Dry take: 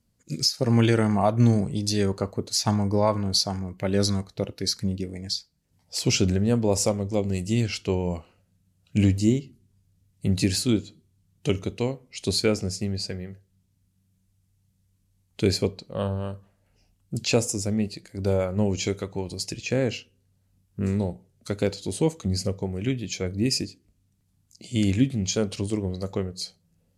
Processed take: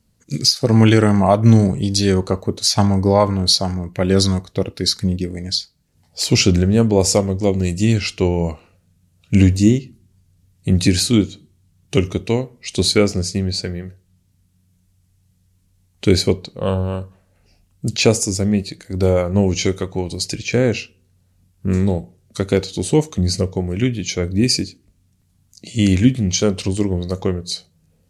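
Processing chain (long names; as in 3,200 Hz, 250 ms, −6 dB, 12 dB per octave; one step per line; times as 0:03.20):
wrong playback speed 25 fps video run at 24 fps
level +8 dB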